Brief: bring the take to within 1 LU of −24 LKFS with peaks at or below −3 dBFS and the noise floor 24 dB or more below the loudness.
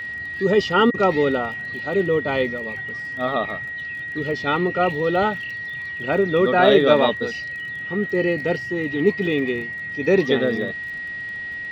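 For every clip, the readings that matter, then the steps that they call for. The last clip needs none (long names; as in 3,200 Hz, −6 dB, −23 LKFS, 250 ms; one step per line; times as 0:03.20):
crackle rate 24 per second; interfering tone 1,900 Hz; level of the tone −28 dBFS; integrated loudness −21.5 LKFS; sample peak −2.5 dBFS; target loudness −24.0 LKFS
→ click removal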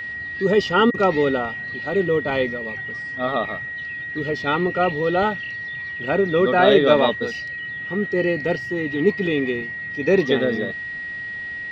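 crackle rate 0 per second; interfering tone 1,900 Hz; level of the tone −28 dBFS
→ notch filter 1,900 Hz, Q 30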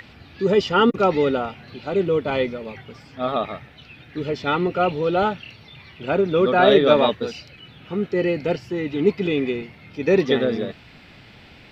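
interfering tone none found; integrated loudness −21.0 LKFS; sample peak −3.0 dBFS; target loudness −24.0 LKFS
→ level −3 dB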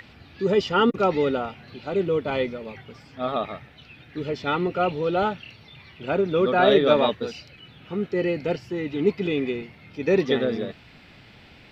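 integrated loudness −24.0 LKFS; sample peak −6.0 dBFS; background noise floor −50 dBFS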